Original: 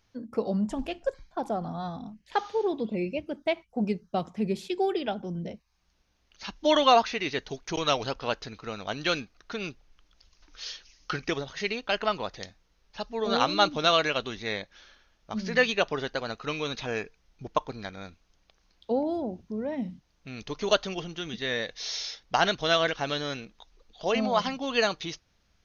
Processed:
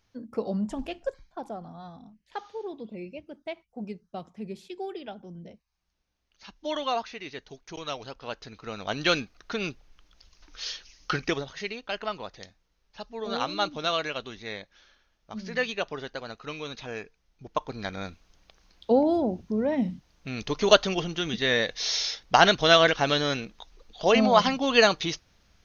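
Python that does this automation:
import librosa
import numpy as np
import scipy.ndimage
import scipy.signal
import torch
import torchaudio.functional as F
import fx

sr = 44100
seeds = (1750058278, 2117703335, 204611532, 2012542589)

y = fx.gain(x, sr, db=fx.line((1.03, -1.5), (1.69, -9.0), (8.13, -9.0), (9.0, 3.5), (11.21, 3.5), (11.73, -5.0), (17.44, -5.0), (17.94, 6.0)))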